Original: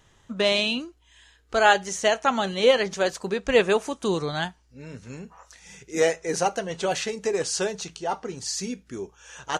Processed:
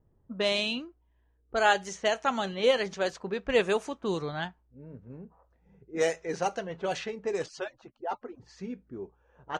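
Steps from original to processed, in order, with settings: 7.46–8.40 s: harmonic-percussive separation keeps percussive; level-controlled noise filter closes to 440 Hz, open at -18.5 dBFS; trim -5.5 dB

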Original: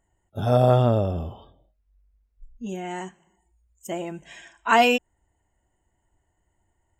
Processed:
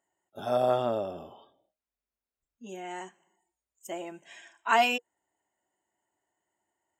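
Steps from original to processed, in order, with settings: high-pass 330 Hz 12 dB/octave; band-stop 480 Hz, Q 12; trim -5 dB

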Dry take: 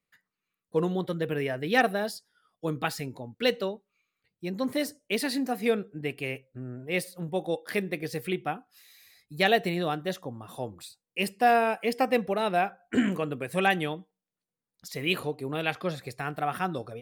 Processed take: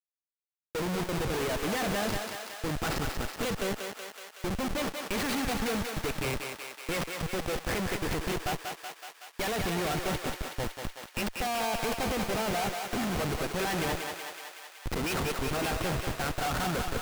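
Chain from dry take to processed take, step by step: tracing distortion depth 0.22 ms; high-pass 140 Hz 6 dB/octave; peaking EQ 1.7 kHz +6 dB 2.7 oct; waveshaping leveller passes 1; dynamic bell 210 Hz, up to +5 dB, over -44 dBFS, Q 7; Schmitt trigger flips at -29.5 dBFS; on a send: thinning echo 187 ms, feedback 73%, high-pass 490 Hz, level -4 dB; on the sum: trim -6.5 dB

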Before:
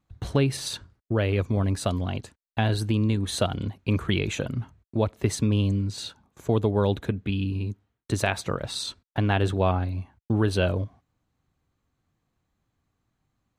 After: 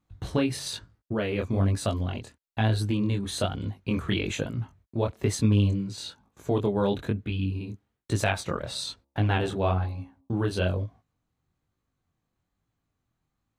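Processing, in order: 8.60–10.34 s: de-hum 68.45 Hz, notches 17; gain riding 2 s; chorus 1.1 Hz, delay 18 ms, depth 7.6 ms

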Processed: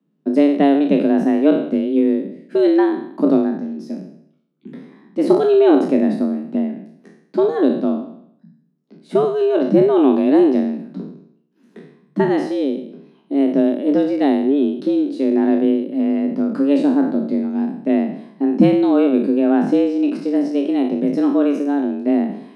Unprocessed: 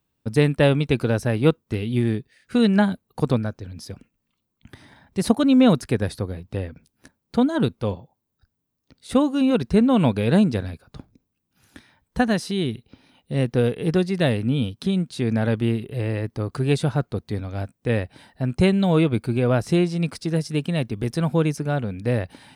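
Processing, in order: spectral sustain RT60 0.68 s; RIAA curve playback; frequency shift +140 Hz; trim -4 dB

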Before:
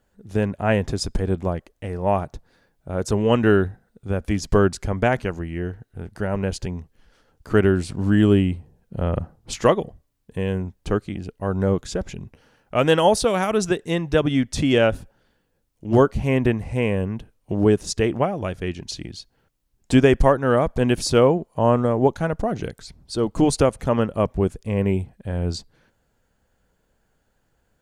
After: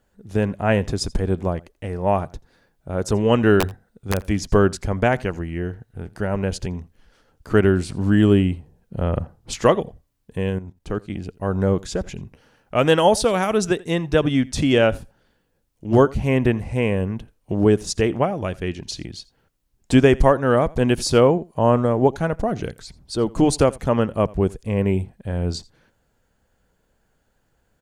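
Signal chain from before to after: 3.60–4.23 s: integer overflow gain 12.5 dB; delay 84 ms -23 dB; 10.49–11.10 s: level held to a coarse grid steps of 12 dB; trim +1 dB

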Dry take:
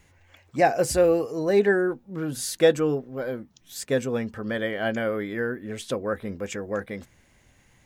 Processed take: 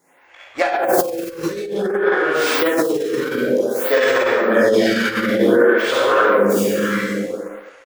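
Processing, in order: tracing distortion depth 0.29 ms; chorus voices 2, 1.1 Hz, delay 18 ms, depth 3 ms; reverberation RT60 1.7 s, pre-delay 33 ms, DRR -8.5 dB; dynamic bell 660 Hz, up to -4 dB, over -30 dBFS, Q 3.8; high-pass 290 Hz 12 dB/octave; in parallel at +1 dB: peak limiter -13.5 dBFS, peak gain reduction 9 dB; on the sum: waveshaping leveller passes 1; compressor with a negative ratio -14 dBFS, ratio -0.5; delay 283 ms -19 dB; lamp-driven phase shifter 0.54 Hz; trim +2 dB

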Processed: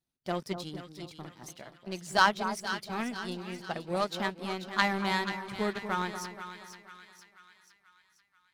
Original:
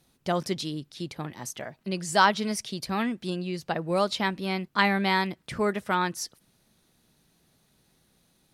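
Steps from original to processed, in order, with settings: coarse spectral quantiser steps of 15 dB; power-law waveshaper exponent 1.4; two-band feedback delay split 1.3 kHz, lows 237 ms, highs 486 ms, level -9 dB

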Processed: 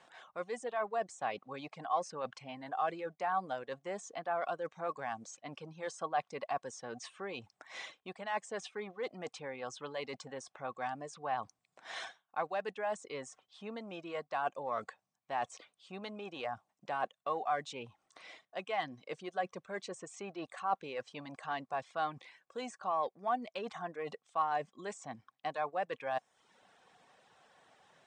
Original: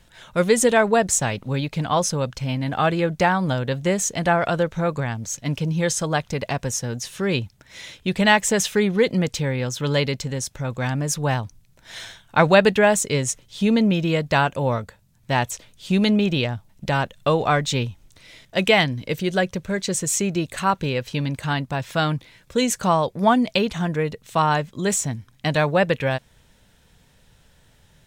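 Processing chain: block-companded coder 7-bit; reverse; compression 16:1, threshold -31 dBFS, peak gain reduction 23 dB; reverse; bass shelf 430 Hz -4 dB; de-esser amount 75%; in parallel at -7.5 dB: overload inside the chain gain 33 dB; on the sum: high-pass 320 Hz 12 dB/octave; reverb removal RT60 0.67 s; Chebyshev low-pass 9.1 kHz, order 8; treble shelf 3.1 kHz -11 dB; small resonant body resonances 760/1100 Hz, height 12 dB, ringing for 30 ms; trim -3 dB

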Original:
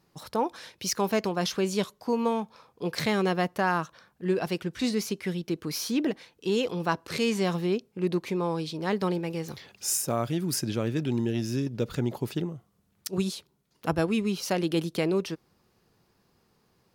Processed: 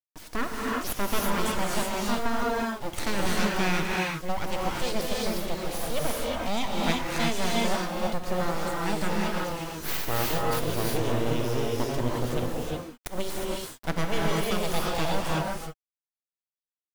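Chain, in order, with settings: full-wave rectifier; word length cut 8-bit, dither none; gated-style reverb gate 390 ms rising, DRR -3 dB

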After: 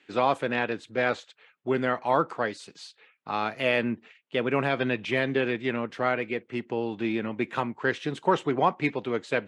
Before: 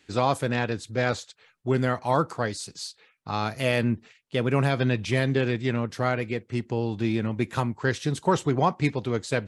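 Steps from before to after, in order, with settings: band-pass 240–7700 Hz; resonant high shelf 3.8 kHz -8 dB, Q 1.5

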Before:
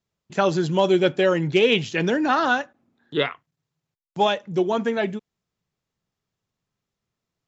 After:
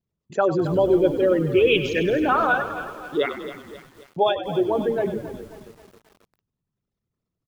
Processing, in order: resonances exaggerated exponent 2; frequency-shifting echo 97 ms, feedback 65%, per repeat -42 Hz, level -12 dB; bit-crushed delay 269 ms, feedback 55%, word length 7-bit, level -13 dB

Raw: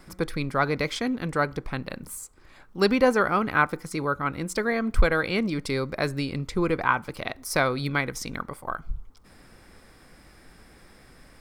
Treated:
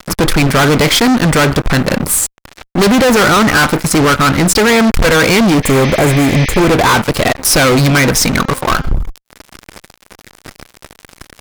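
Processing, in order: fuzz box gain 39 dB, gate -45 dBFS; 5.66–6.63 s: spectral replace 1.7–6.4 kHz after; 8.36–8.94 s: de-hum 263.9 Hz, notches 28; trim +5.5 dB

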